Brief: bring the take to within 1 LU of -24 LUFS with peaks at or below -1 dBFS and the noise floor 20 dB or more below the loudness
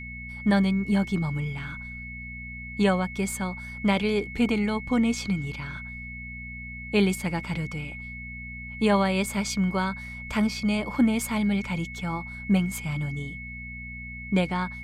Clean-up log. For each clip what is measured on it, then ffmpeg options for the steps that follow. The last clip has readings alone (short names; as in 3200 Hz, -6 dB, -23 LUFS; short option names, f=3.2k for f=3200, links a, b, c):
hum 60 Hz; harmonics up to 240 Hz; hum level -38 dBFS; steady tone 2200 Hz; tone level -38 dBFS; loudness -27.5 LUFS; peak -11.5 dBFS; loudness target -24.0 LUFS
-> -af "bandreject=f=60:t=h:w=4,bandreject=f=120:t=h:w=4,bandreject=f=180:t=h:w=4,bandreject=f=240:t=h:w=4"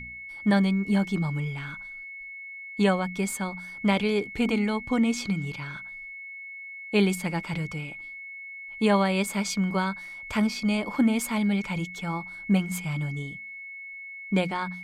hum none; steady tone 2200 Hz; tone level -38 dBFS
-> -af "bandreject=f=2.2k:w=30"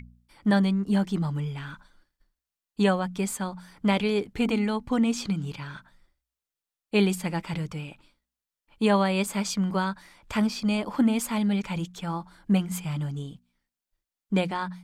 steady tone none; loudness -27.0 LUFS; peak -11.5 dBFS; loudness target -24.0 LUFS
-> -af "volume=3dB"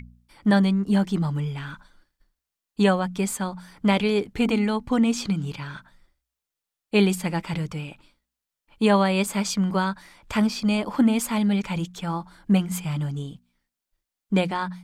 loudness -24.0 LUFS; peak -8.5 dBFS; noise floor -87 dBFS